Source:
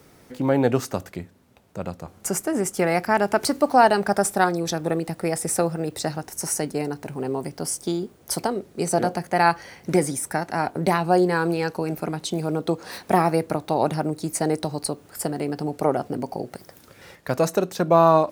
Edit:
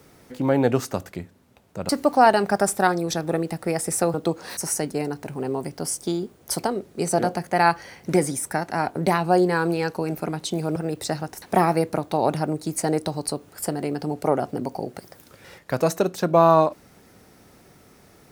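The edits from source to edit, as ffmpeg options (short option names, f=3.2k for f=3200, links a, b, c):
-filter_complex "[0:a]asplit=6[a][b][c][d][e][f];[a]atrim=end=1.892[g];[b]atrim=start=3.458:end=5.712[h];[c]atrim=start=12.558:end=12.992[i];[d]atrim=start=6.368:end=12.562[j];[e]atrim=start=5.708:end=6.372[k];[f]atrim=start=12.988[l];[g][h]acrossfade=d=0.004:c1=hsin:c2=hsin[m];[m][i]acrossfade=d=0.004:c1=hsin:c2=hsin[n];[n][j]acrossfade=d=0.004:c1=hsin:c2=hsin[o];[o][k]acrossfade=d=0.004:c1=hsin:c2=hsin[p];[p][l]acrossfade=d=0.004:c1=hsin:c2=hsin"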